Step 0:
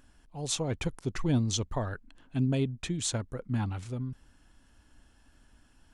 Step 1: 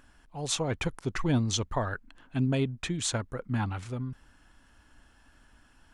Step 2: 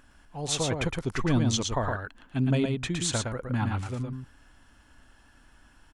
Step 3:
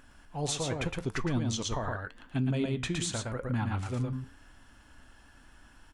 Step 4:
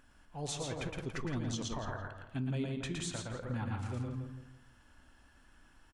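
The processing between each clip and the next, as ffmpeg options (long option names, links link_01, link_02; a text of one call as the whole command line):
ffmpeg -i in.wav -af "equalizer=frequency=1400:width=0.6:gain=6.5" out.wav
ffmpeg -i in.wav -af "aecho=1:1:114:0.631,volume=1dB" out.wav
ffmpeg -i in.wav -af "alimiter=limit=-23dB:level=0:latency=1:release=261,flanger=delay=7.7:depth=6.7:regen=-79:speed=0.85:shape=sinusoidal,volume=5.5dB" out.wav
ffmpeg -i in.wav -filter_complex "[0:a]asplit=2[link_01][link_02];[link_02]adelay=167,lowpass=frequency=3000:poles=1,volume=-6dB,asplit=2[link_03][link_04];[link_04]adelay=167,lowpass=frequency=3000:poles=1,volume=0.34,asplit=2[link_05][link_06];[link_06]adelay=167,lowpass=frequency=3000:poles=1,volume=0.34,asplit=2[link_07][link_08];[link_08]adelay=167,lowpass=frequency=3000:poles=1,volume=0.34[link_09];[link_01][link_03][link_05][link_07][link_09]amix=inputs=5:normalize=0,volume=-7dB" out.wav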